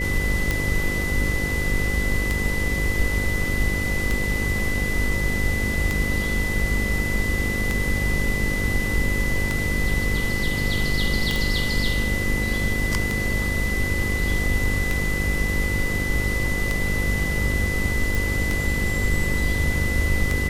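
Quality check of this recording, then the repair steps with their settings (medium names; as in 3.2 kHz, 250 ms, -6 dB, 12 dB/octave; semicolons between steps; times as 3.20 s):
buzz 50 Hz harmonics 11 -28 dBFS
tick 33 1/3 rpm
whine 2 kHz -26 dBFS
11.36 s: pop
18.15 s: pop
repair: de-click; de-hum 50 Hz, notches 11; band-stop 2 kHz, Q 30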